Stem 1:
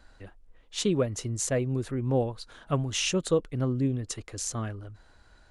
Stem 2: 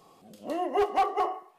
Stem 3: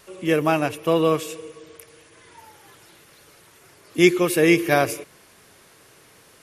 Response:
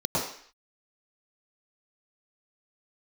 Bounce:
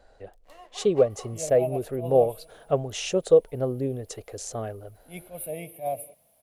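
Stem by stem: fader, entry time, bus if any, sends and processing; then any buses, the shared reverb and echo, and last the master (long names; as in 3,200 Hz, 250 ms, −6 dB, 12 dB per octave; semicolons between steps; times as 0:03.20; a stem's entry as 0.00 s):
−4.0 dB, 0.00 s, no send, flat-topped bell 560 Hz +13 dB 1.2 octaves
−1.5 dB, 0.00 s, no send, high-pass filter 1,000 Hz 12 dB per octave; dead-zone distortion −49.5 dBFS; automatic ducking −13 dB, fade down 1.05 s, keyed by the first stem
−15.0 dB, 1.10 s, no send, drawn EQ curve 250 Hz 0 dB, 360 Hz −17 dB, 640 Hz +13 dB, 1,500 Hz −29 dB, 2,200 Hz −9 dB, 3,500 Hz −9 dB, 6,200 Hz −29 dB, 9,900 Hz +9 dB; bit-depth reduction 10 bits, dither triangular; level that may rise only so fast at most 230 dB per second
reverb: not used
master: no processing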